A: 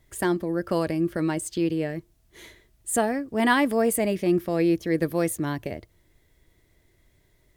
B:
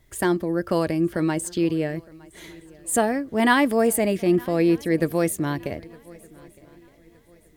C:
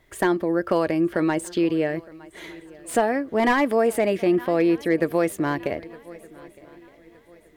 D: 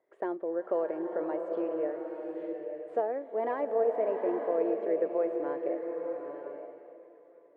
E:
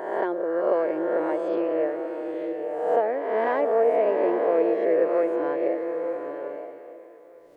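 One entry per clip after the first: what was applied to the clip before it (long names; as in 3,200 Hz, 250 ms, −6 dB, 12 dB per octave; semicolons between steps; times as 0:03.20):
feedback echo with a long and a short gap by turns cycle 1,216 ms, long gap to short 3 to 1, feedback 31%, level −24 dB; level +2.5 dB
bass and treble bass −10 dB, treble −10 dB; downward compressor 2 to 1, threshold −24 dBFS, peak gain reduction 6 dB; slew-rate limiting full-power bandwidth 110 Hz; level +5.5 dB
four-pole ladder band-pass 580 Hz, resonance 45%; slow-attack reverb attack 880 ms, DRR 3.5 dB
peak hold with a rise ahead of every peak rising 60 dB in 1.10 s; high-shelf EQ 2,100 Hz +9 dB; level +4.5 dB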